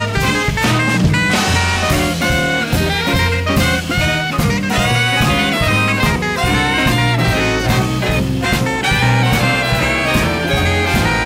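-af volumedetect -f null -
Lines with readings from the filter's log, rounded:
mean_volume: -14.6 dB
max_volume: -5.9 dB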